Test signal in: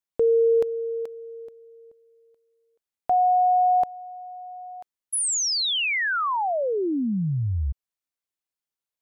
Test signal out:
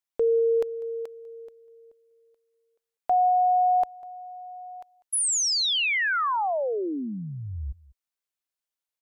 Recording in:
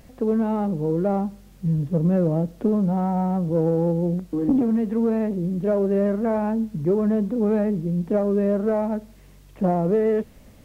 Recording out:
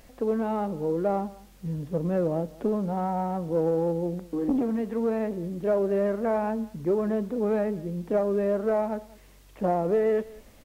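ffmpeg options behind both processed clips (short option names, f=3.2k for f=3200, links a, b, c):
-filter_complex "[0:a]equalizer=f=130:w=0.57:g=-10.5,asplit=2[a][b];[b]aecho=0:1:197:0.0841[c];[a][c]amix=inputs=2:normalize=0"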